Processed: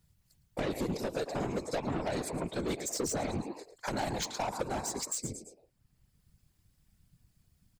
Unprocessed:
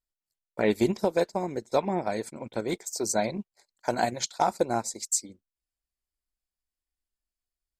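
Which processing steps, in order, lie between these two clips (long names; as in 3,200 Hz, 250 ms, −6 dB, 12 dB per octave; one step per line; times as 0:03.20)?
low-shelf EQ 130 Hz +11.5 dB
echo with shifted repeats 110 ms, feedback 37%, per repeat +97 Hz, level −16.5 dB
downward compressor 6 to 1, threshold −27 dBFS, peak gain reduction 11 dB
soft clipping −32.5 dBFS, distortion −7 dB
random phases in short frames
multiband upward and downward compressor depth 40%
level +3.5 dB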